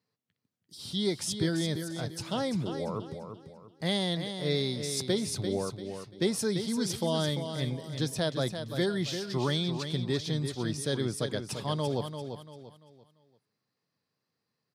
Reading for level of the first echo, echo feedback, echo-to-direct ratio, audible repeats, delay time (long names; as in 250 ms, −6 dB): −8.0 dB, 34%, −7.5 dB, 3, 342 ms